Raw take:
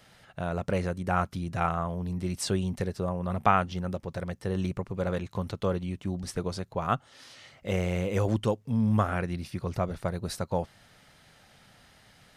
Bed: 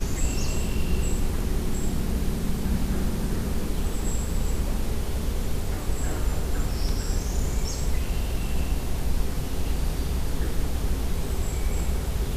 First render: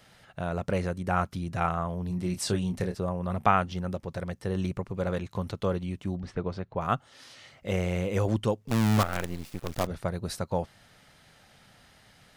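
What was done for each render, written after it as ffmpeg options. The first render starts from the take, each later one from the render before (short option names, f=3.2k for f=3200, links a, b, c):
-filter_complex "[0:a]asettb=1/sr,asplit=3[a][b][c];[a]atrim=end=2.084[d];[b]atrim=start=2.08:end=2.95,asetpts=PTS-STARTPTS,afade=t=in:d=0.004:c=qsin,afade=t=out:st=0.866:d=0.004:c=qsin,asplit=2[e][f];[f]adelay=28,volume=-8dB[g];[e][g]amix=inputs=2:normalize=0,atrim=end_sample=38367[h];[c]atrim=start=2.946[i];[d][h]acrossfade=d=0.004:c1=hsin:c2=qsin[j];[j][i]acrossfade=d=0.004:c1=qsin:c2=hsin,asettb=1/sr,asplit=3[k][l][m];[k]atrim=end=6.164[n];[l]atrim=start=6.16:end=6.81,asetpts=PTS-STARTPTS,afade=t=in:d=0.004:c=qsin,afade=t=out:st=0.646:d=0.004:c=qsin,lowpass=2.7k[o];[m]atrim=start=6.806[p];[n][o]acrossfade=d=0.004:c1=hsin:c2=qsin[q];[q][p]acrossfade=d=0.004:c1=qsin:c2=hsin,asettb=1/sr,asplit=3[r][s][t];[r]atrim=end=8.684[u];[s]atrim=start=8.68:end=9.87,asetpts=PTS-STARTPTS,afade=t=in:d=0.004:c=qsin,afade=t=out:st=1.186:d=0.004:c=qsin,acrusher=bits=5:dc=4:mix=0:aa=0.000001[v];[t]atrim=start=9.866[w];[u][v]acrossfade=d=0.004:c1=hsin:c2=qsin[x];[x][w]acrossfade=d=0.004:c1=qsin:c2=hsin"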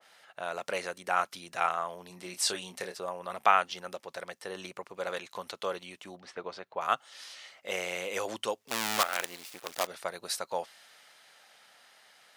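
-af "highpass=600,adynamicequalizer=threshold=0.00562:dfrequency=1900:dqfactor=0.7:tfrequency=1900:tqfactor=0.7:attack=5:release=100:ratio=0.375:range=3:mode=boostabove:tftype=highshelf"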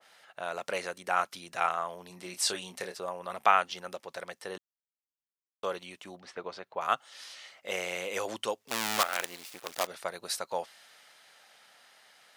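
-filter_complex "[0:a]asplit=3[a][b][c];[a]atrim=end=4.58,asetpts=PTS-STARTPTS,afade=t=out:st=4.576:d=0.004:c=hsin[d];[b]atrim=start=4.58:end=5.63,asetpts=PTS-STARTPTS,volume=0[e];[c]atrim=start=5.63,asetpts=PTS-STARTPTS,afade=t=in:d=0.004:c=hsin[f];[d][e][f]concat=n=3:v=0:a=1"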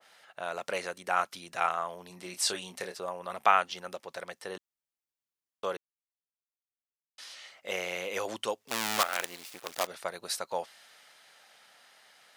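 -filter_complex "[0:a]asettb=1/sr,asplit=3[a][b][c];[a]atrim=end=7.714[d];[b]atrim=start=7.71:end=8.25,asetpts=PTS-STARTPTS,afade=t=in:d=0.004:c=qsin,afade=t=out:st=0.536:d=0.004:c=qsin,equalizer=f=8.1k:w=4.6:g=-10[e];[c]atrim=start=8.246[f];[d][e]acrossfade=d=0.004:c1=hsin:c2=qsin[g];[g][f]acrossfade=d=0.004:c1=qsin:c2=hsin,asplit=3[h][i][j];[h]atrim=end=5.77,asetpts=PTS-STARTPTS,afade=t=out:st=5.766:d=0.004:c=hsin[k];[i]atrim=start=5.77:end=7.18,asetpts=PTS-STARTPTS,volume=0[l];[j]atrim=start=7.18,asetpts=PTS-STARTPTS,afade=t=in:d=0.004:c=hsin[m];[k][l][m]concat=n=3:v=0:a=1"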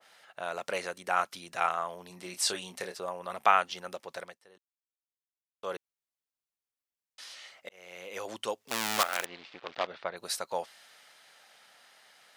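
-filter_complex "[0:a]asplit=3[a][b][c];[a]afade=t=out:st=9.24:d=0.02[d];[b]lowpass=f=3.9k:w=0.5412,lowpass=f=3.9k:w=1.3066,afade=t=in:st=9.24:d=0.02,afade=t=out:st=10.16:d=0.02[e];[c]afade=t=in:st=10.16:d=0.02[f];[d][e][f]amix=inputs=3:normalize=0,asplit=4[g][h][i][j];[g]atrim=end=4.39,asetpts=PTS-STARTPTS,afade=t=out:st=4.19:d=0.2:silence=0.105925[k];[h]atrim=start=4.39:end=5.55,asetpts=PTS-STARTPTS,volume=-19.5dB[l];[i]atrim=start=5.55:end=7.69,asetpts=PTS-STARTPTS,afade=t=in:d=0.2:silence=0.105925,afade=t=out:st=2.136:d=0.004:c=hsin[m];[j]atrim=start=7.69,asetpts=PTS-STARTPTS,afade=t=in:d=0.93[n];[k][l][m][n]concat=n=4:v=0:a=1"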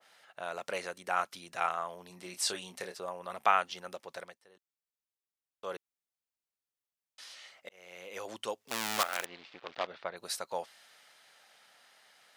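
-af "volume=-3dB"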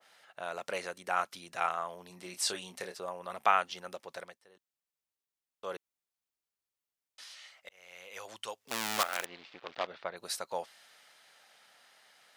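-filter_complex "[0:a]asettb=1/sr,asplit=3[a][b][c];[a]atrim=end=7.234[d];[b]atrim=start=7.23:end=8.63,asetpts=PTS-STARTPTS,afade=t=in:d=0.004:c=qsin,afade=t=out:st=1.396:d=0.004:c=qsin,equalizer=f=280:t=o:w=2:g=-11.5[e];[c]atrim=start=8.626[f];[d][e]acrossfade=d=0.004:c1=hsin:c2=qsin[g];[g][f]acrossfade=d=0.004:c1=qsin:c2=hsin"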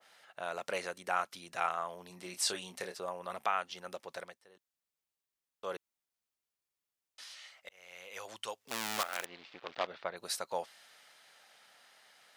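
-af "alimiter=limit=-18.5dB:level=0:latency=1:release=415"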